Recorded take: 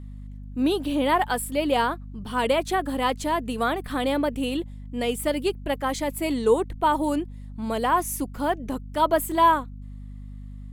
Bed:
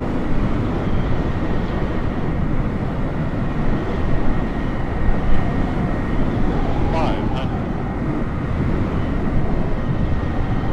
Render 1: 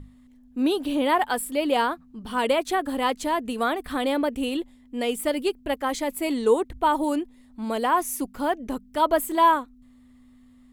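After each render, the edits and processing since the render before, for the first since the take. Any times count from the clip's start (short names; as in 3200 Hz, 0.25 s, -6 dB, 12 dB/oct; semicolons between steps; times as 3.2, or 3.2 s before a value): notches 50/100/150/200 Hz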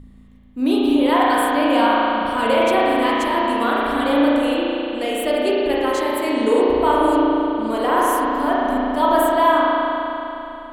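spring tank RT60 3.3 s, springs 35 ms, chirp 25 ms, DRR -6.5 dB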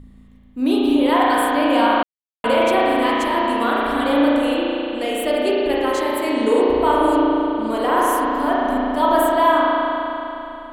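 2.03–2.44 mute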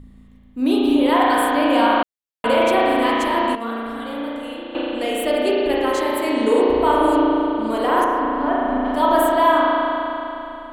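3.55–4.75 resonator 230 Hz, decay 0.29 s, mix 80%; 8.04–8.85 air absorption 290 m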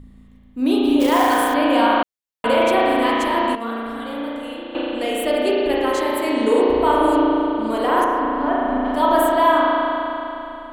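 1–1.54 short-mantissa float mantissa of 2-bit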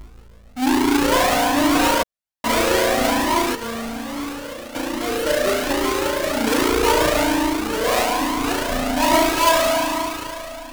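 half-waves squared off; cascading flanger rising 1.2 Hz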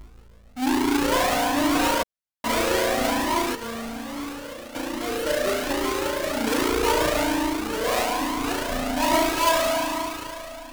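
gain -4.5 dB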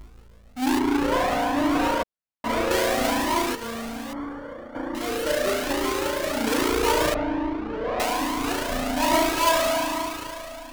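0.79–2.71 high shelf 3300 Hz -11.5 dB; 4.13–4.95 polynomial smoothing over 41 samples; 7.14–8 tape spacing loss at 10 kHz 43 dB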